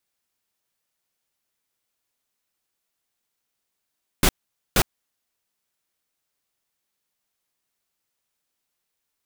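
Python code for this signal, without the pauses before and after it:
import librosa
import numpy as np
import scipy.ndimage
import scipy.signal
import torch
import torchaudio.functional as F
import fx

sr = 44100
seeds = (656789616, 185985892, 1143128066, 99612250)

y = fx.noise_burst(sr, seeds[0], colour='pink', on_s=0.06, off_s=0.47, bursts=2, level_db=-16.5)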